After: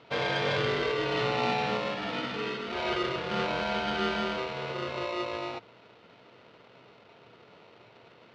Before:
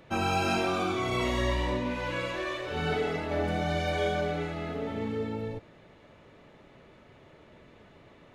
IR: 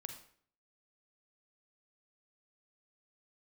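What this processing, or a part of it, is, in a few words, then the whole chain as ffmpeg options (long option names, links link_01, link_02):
ring modulator pedal into a guitar cabinet: -af "aeval=exprs='val(0)*sgn(sin(2*PI*800*n/s))':channel_layout=same,highpass=110,equalizer=frequency=120:width_type=q:width=4:gain=9,equalizer=frequency=450:width_type=q:width=4:gain=6,equalizer=frequency=1100:width_type=q:width=4:gain=-6,equalizer=frequency=1700:width_type=q:width=4:gain=-3,lowpass=frequency=4200:width=0.5412,lowpass=frequency=4200:width=1.3066"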